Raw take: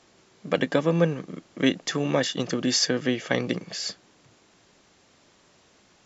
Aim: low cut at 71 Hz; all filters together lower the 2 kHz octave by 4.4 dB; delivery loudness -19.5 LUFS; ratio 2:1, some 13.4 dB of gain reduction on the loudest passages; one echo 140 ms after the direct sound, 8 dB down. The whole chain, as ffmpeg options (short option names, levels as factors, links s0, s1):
-af "highpass=71,equalizer=f=2000:t=o:g=-5.5,acompressor=threshold=0.00794:ratio=2,aecho=1:1:140:0.398,volume=7.5"